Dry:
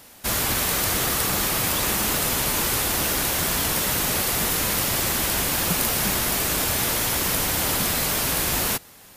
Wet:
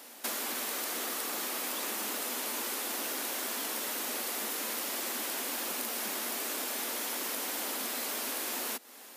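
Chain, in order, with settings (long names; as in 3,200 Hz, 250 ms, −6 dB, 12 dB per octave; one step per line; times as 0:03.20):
elliptic high-pass filter 230 Hz, stop band 40 dB
downward compressor 6 to 1, threshold −32 dBFS, peak gain reduction 11.5 dB
level −1 dB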